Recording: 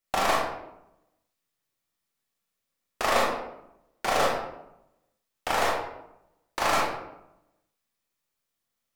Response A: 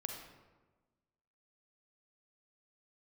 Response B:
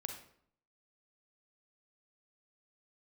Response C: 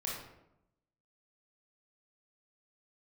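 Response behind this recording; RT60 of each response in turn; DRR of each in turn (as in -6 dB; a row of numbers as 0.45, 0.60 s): C; 1.3, 0.65, 0.85 s; 2.5, 4.0, -4.5 dB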